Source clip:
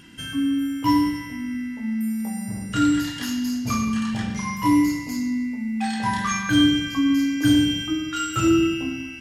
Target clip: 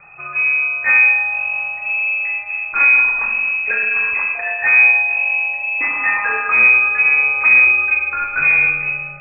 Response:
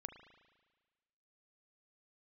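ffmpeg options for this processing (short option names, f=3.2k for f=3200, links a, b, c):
-filter_complex "[0:a]aeval=exprs='(tanh(7.94*val(0)+0.6)-tanh(0.6))/7.94':c=same,afreqshift=-210,asplit=2[a][b];[1:a]atrim=start_sample=2205[c];[b][c]afir=irnorm=-1:irlink=0,volume=8dB[d];[a][d]amix=inputs=2:normalize=0,lowpass=f=2.2k:t=q:w=0.5098,lowpass=f=2.2k:t=q:w=0.6013,lowpass=f=2.2k:t=q:w=0.9,lowpass=f=2.2k:t=q:w=2.563,afreqshift=-2600,volume=2dB"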